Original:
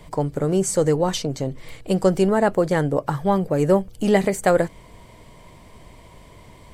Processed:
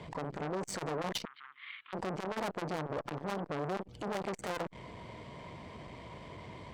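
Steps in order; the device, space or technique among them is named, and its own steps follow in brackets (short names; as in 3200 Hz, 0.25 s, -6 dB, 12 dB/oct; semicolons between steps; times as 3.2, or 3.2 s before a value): valve radio (BPF 87–4100 Hz; tube stage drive 31 dB, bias 0.35; core saturation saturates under 720 Hz); 1.25–1.93 elliptic band-pass 1200–3500 Hz, stop band 40 dB; gain +2.5 dB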